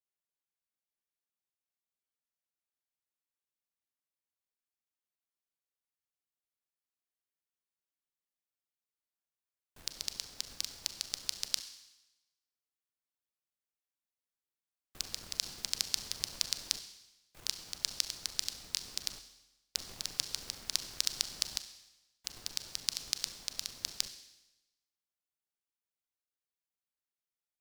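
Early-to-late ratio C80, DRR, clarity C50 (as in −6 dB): 13.0 dB, 9.5 dB, 11.5 dB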